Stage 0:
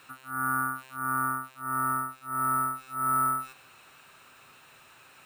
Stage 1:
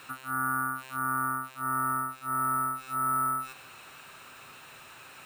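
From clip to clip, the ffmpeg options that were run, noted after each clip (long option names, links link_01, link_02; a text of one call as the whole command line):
ffmpeg -i in.wav -af "acompressor=threshold=-35dB:ratio=2.5,volume=5.5dB" out.wav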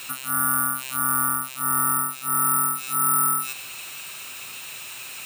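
ffmpeg -i in.wav -af "aexciter=amount=4.2:drive=3.1:freq=2200,volume=3.5dB" out.wav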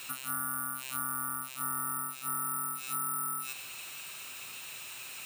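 ffmpeg -i in.wav -af "acompressor=threshold=-23dB:ratio=6,volume=-7dB" out.wav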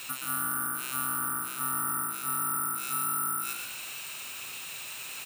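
ffmpeg -i in.wav -filter_complex "[0:a]asplit=7[link_01][link_02][link_03][link_04][link_05][link_06][link_07];[link_02]adelay=120,afreqshift=55,volume=-6.5dB[link_08];[link_03]adelay=240,afreqshift=110,volume=-13.1dB[link_09];[link_04]adelay=360,afreqshift=165,volume=-19.6dB[link_10];[link_05]adelay=480,afreqshift=220,volume=-26.2dB[link_11];[link_06]adelay=600,afreqshift=275,volume=-32.7dB[link_12];[link_07]adelay=720,afreqshift=330,volume=-39.3dB[link_13];[link_01][link_08][link_09][link_10][link_11][link_12][link_13]amix=inputs=7:normalize=0,volume=3dB" out.wav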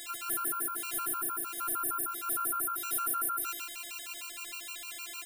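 ffmpeg -i in.wav -af "afftfilt=real='hypot(re,im)*cos(PI*b)':imag='0':win_size=512:overlap=0.75,afftfilt=real='re*gt(sin(2*PI*6.5*pts/sr)*(1-2*mod(floor(b*sr/1024/770),2)),0)':imag='im*gt(sin(2*PI*6.5*pts/sr)*(1-2*mod(floor(b*sr/1024/770),2)),0)':win_size=1024:overlap=0.75,volume=4.5dB" out.wav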